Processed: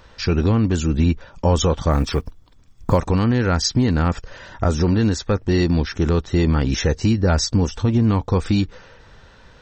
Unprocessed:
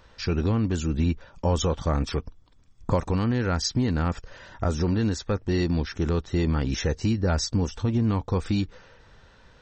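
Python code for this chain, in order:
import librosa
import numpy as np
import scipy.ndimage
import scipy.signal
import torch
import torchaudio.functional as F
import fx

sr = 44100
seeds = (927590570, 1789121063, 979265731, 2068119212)

y = fx.block_float(x, sr, bits=7, at=(1.91, 2.98))
y = y * 10.0 ** (6.5 / 20.0)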